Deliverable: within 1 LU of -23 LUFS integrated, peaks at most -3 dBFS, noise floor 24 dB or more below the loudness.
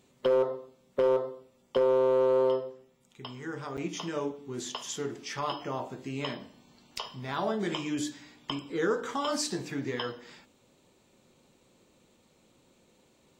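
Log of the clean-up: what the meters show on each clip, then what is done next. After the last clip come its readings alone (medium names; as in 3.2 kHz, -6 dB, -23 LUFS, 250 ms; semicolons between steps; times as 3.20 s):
clipped samples 0.2%; clipping level -18.5 dBFS; dropouts 1; longest dropout 8.0 ms; loudness -31.0 LUFS; peak level -18.5 dBFS; loudness target -23.0 LUFS
-> clip repair -18.5 dBFS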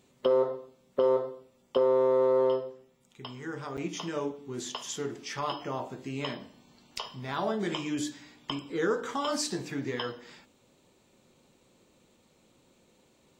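clipped samples 0.0%; dropouts 1; longest dropout 8.0 ms
-> interpolate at 3.77 s, 8 ms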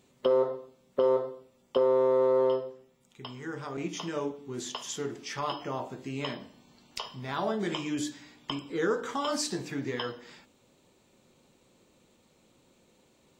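dropouts 0; loudness -31.0 LUFS; peak level -13.0 dBFS; loudness target -23.0 LUFS
-> trim +8 dB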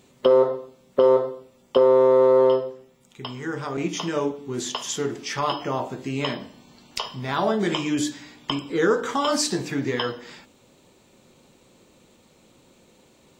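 loudness -23.0 LUFS; peak level -5.0 dBFS; noise floor -58 dBFS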